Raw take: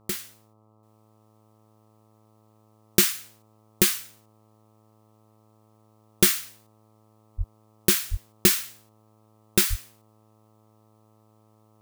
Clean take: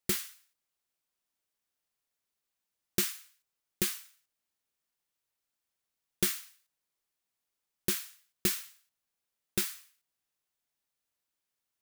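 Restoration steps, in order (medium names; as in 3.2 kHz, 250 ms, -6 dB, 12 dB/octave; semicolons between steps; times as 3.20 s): de-hum 108.3 Hz, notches 12; 7.37–7.49 s: high-pass 140 Hz 24 dB/octave; 8.10–8.22 s: high-pass 140 Hz 24 dB/octave; 9.69–9.81 s: high-pass 140 Hz 24 dB/octave; trim 0 dB, from 0.83 s -10.5 dB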